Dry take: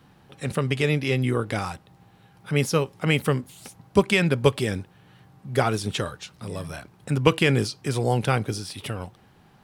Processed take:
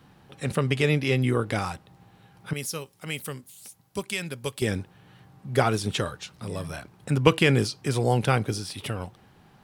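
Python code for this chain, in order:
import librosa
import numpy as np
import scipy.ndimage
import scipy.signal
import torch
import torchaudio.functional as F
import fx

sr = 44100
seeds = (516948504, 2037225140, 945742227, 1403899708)

y = fx.pre_emphasis(x, sr, coefficient=0.8, at=(2.53, 4.62))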